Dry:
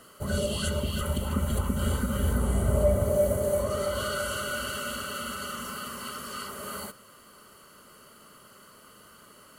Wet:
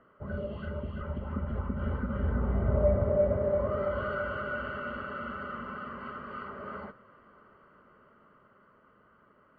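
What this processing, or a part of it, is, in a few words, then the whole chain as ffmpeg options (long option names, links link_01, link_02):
action camera in a waterproof case: -af "lowpass=frequency=1900:width=0.5412,lowpass=frequency=1900:width=1.3066,dynaudnorm=framelen=260:gausssize=17:maxgain=6dB,volume=-7dB" -ar 32000 -c:a aac -b:a 48k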